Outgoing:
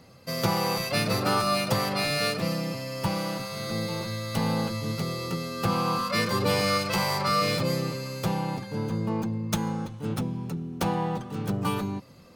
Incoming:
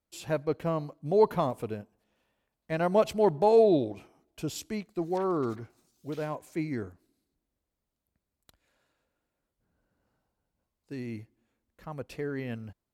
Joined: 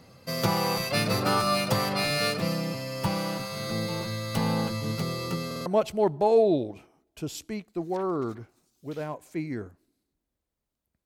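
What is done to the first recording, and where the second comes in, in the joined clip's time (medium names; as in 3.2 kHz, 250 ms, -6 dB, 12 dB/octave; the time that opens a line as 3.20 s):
outgoing
5.46 s: stutter in place 0.05 s, 4 plays
5.66 s: go over to incoming from 2.87 s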